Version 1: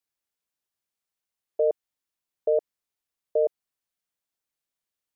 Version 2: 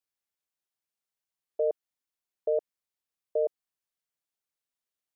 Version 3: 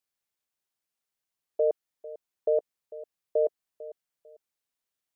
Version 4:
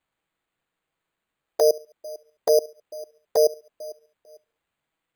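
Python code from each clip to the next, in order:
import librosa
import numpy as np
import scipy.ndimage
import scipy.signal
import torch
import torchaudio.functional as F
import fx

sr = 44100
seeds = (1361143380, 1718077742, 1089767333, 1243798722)

y1 = fx.low_shelf(x, sr, hz=190.0, db=-3.0)
y1 = y1 * librosa.db_to_amplitude(-4.0)
y2 = fx.echo_feedback(y1, sr, ms=448, feedback_pct=26, wet_db=-17.0)
y2 = y2 * librosa.db_to_amplitude(2.5)
y3 = fx.echo_feedback(y2, sr, ms=70, feedback_pct=46, wet_db=-22)
y3 = fx.env_flanger(y3, sr, rest_ms=6.2, full_db=-23.5)
y3 = np.repeat(y3[::8], 8)[:len(y3)]
y3 = y3 * librosa.db_to_amplitude(8.0)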